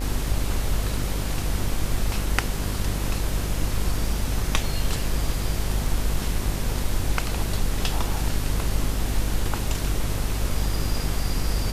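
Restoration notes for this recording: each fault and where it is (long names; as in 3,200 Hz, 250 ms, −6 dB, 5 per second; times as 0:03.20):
mains buzz 50 Hz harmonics 34 −28 dBFS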